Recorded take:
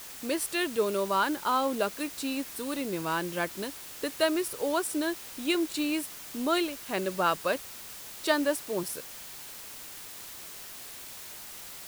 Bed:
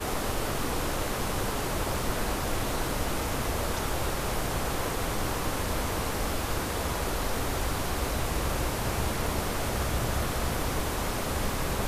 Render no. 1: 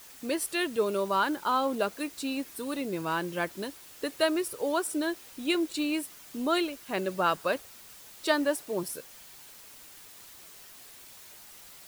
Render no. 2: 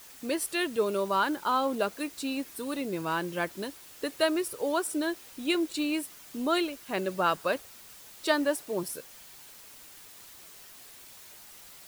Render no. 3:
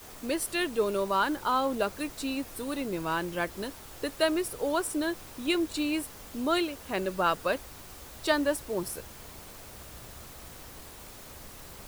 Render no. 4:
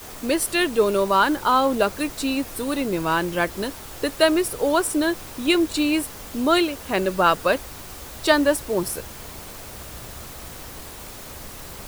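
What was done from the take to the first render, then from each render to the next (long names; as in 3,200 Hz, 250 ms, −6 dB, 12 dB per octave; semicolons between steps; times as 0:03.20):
broadband denoise 7 dB, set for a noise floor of −44 dBFS
no processing that can be heard
mix in bed −19.5 dB
level +8.5 dB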